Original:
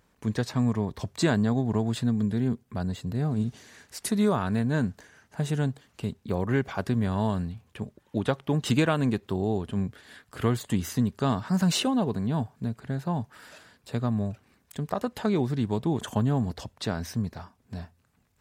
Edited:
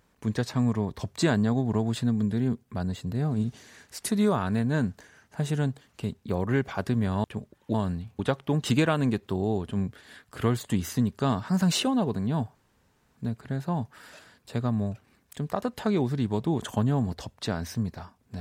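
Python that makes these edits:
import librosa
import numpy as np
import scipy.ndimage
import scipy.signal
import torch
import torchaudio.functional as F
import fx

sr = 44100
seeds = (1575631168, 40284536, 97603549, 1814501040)

y = fx.edit(x, sr, fx.move(start_s=7.24, length_s=0.45, to_s=8.19),
    fx.insert_room_tone(at_s=12.55, length_s=0.61), tone=tone)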